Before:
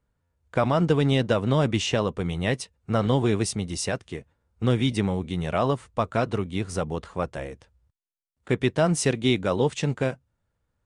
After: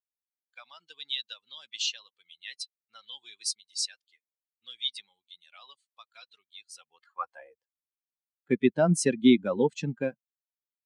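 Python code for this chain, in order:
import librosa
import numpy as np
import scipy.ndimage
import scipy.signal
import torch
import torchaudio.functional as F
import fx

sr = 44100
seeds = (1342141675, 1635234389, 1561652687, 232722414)

y = fx.bin_expand(x, sr, power=2.0)
y = fx.filter_sweep_highpass(y, sr, from_hz=3900.0, to_hz=220.0, start_s=6.71, end_s=7.92, q=2.9)
y = fx.wow_flutter(y, sr, seeds[0], rate_hz=2.1, depth_cents=19.0)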